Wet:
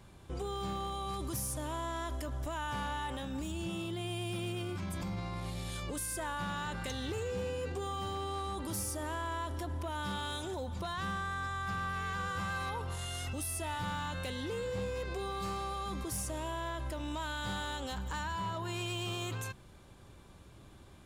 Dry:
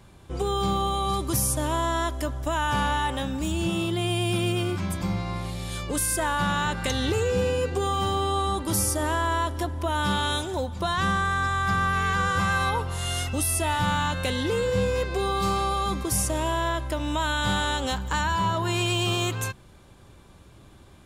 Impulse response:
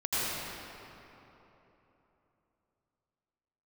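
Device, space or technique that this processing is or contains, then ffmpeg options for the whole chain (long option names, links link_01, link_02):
clipper into limiter: -af "asoftclip=type=hard:threshold=-19dB,alimiter=level_in=2.5dB:limit=-24dB:level=0:latency=1:release=31,volume=-2.5dB,volume=-4.5dB"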